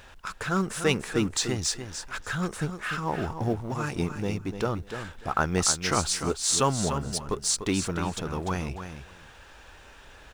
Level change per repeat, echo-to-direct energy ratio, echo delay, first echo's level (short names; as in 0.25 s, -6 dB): -16.0 dB, -9.0 dB, 0.296 s, -9.0 dB